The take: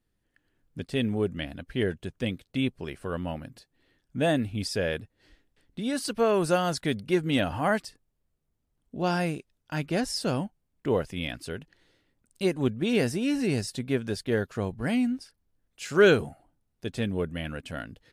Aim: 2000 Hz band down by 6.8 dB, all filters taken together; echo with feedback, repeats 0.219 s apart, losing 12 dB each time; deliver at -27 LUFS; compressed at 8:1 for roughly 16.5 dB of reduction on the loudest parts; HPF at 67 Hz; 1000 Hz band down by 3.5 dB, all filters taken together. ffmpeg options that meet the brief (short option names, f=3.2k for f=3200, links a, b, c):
-af "highpass=67,equalizer=f=1k:t=o:g=-3,equalizer=f=2k:t=o:g=-8.5,acompressor=threshold=-32dB:ratio=8,aecho=1:1:219|438|657:0.251|0.0628|0.0157,volume=11dB"